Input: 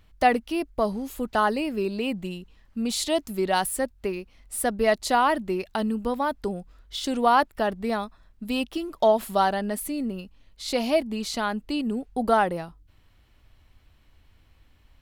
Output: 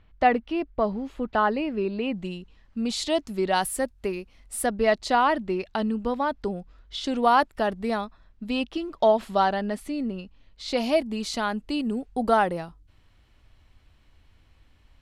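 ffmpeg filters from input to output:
ffmpeg -i in.wav -af "asetnsamples=nb_out_samples=441:pad=0,asendcmd='2.14 lowpass f 6400;3.61 lowpass f 12000;4.66 lowpass f 5300;7.23 lowpass f 9600;8.01 lowpass f 5200;10.77 lowpass f 10000',lowpass=2900" out.wav

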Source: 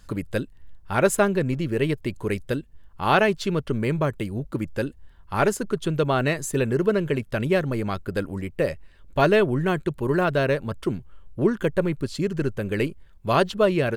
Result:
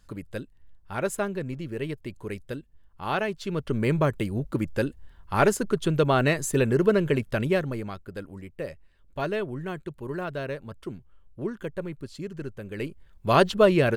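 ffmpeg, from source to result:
ffmpeg -i in.wav -af "volume=12.5dB,afade=type=in:start_time=3.4:duration=0.5:silence=0.354813,afade=type=out:start_time=7.23:duration=0.75:silence=0.281838,afade=type=in:start_time=12.74:duration=0.69:silence=0.251189" out.wav

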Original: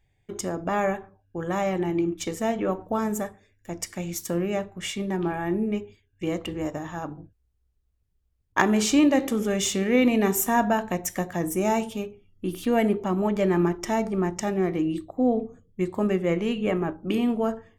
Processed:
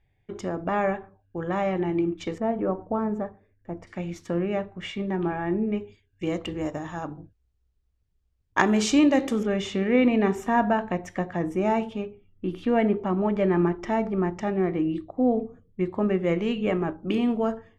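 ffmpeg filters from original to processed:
ffmpeg -i in.wav -af "asetnsamples=nb_out_samples=441:pad=0,asendcmd='2.38 lowpass f 1200;3.87 lowpass f 2800;5.81 lowpass f 6700;9.43 lowpass f 2700;16.23 lowpass f 5300',lowpass=3200" out.wav

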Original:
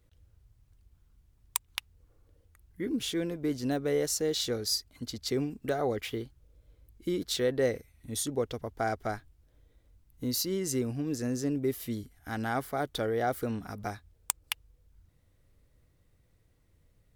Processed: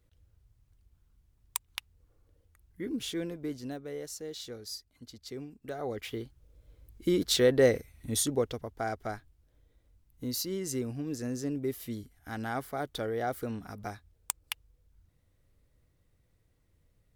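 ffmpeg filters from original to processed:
ffmpeg -i in.wav -af "volume=13dB,afade=type=out:start_time=3.24:duration=0.59:silence=0.398107,afade=type=in:start_time=5.61:duration=0.56:silence=0.354813,afade=type=in:start_time=6.17:duration=1.08:silence=0.446684,afade=type=out:start_time=8.09:duration=0.6:silence=0.398107" out.wav

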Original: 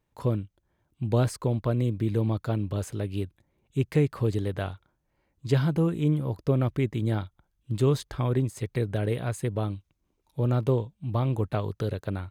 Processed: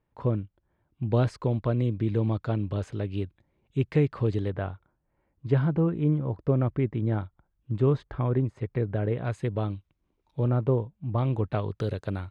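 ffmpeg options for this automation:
ffmpeg -i in.wav -af "asetnsamples=nb_out_samples=441:pad=0,asendcmd='1.13 lowpass f 3800;4.5 lowpass f 1800;9.25 lowpass f 3700;10.48 lowpass f 1700;11.18 lowpass f 3700;11.8 lowpass f 7400',lowpass=2300" out.wav

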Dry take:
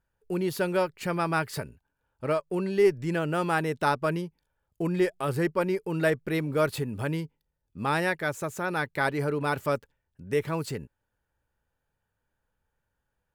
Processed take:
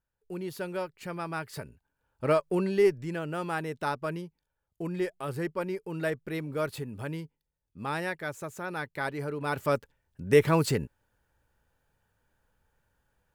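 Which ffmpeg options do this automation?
ffmpeg -i in.wav -af "volume=15.5dB,afade=type=in:start_time=1.47:duration=0.94:silence=0.281838,afade=type=out:start_time=2.41:duration=0.7:silence=0.354813,afade=type=in:start_time=9.38:duration=0.97:silence=0.237137" out.wav

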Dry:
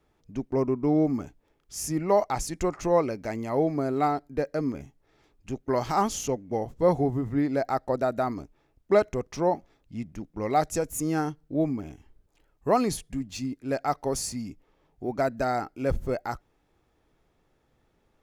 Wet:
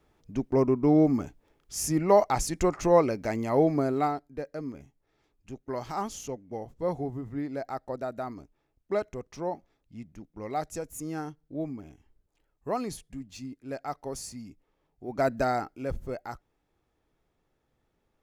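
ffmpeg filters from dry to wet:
ffmpeg -i in.wav -af "volume=12dB,afade=type=out:start_time=3.76:duration=0.5:silence=0.316228,afade=type=in:start_time=15.06:duration=0.24:silence=0.316228,afade=type=out:start_time=15.3:duration=0.58:silence=0.375837" out.wav

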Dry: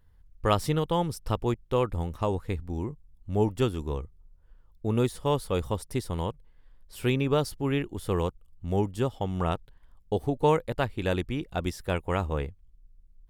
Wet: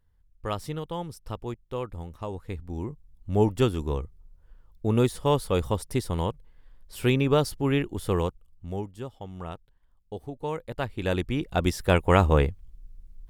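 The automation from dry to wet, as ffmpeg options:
ffmpeg -i in.wav -af "volume=22dB,afade=type=in:start_time=2.31:duration=1.06:silence=0.316228,afade=type=out:start_time=8.02:duration=0.88:silence=0.237137,afade=type=in:start_time=10.5:duration=0.68:silence=0.281838,afade=type=in:start_time=11.18:duration=1.11:silence=0.398107" out.wav

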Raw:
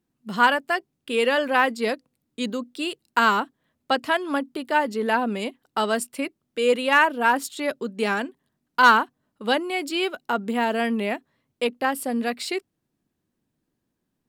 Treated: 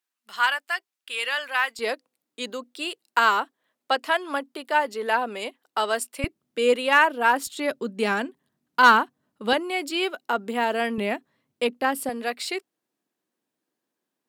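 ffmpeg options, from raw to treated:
ffmpeg -i in.wav -af "asetnsamples=nb_out_samples=441:pad=0,asendcmd='1.79 highpass f 450;6.24 highpass f 120;6.74 highpass f 300;7.47 highpass f 110;9.53 highpass f 290;10.98 highpass f 130;12.09 highpass f 400',highpass=1300" out.wav

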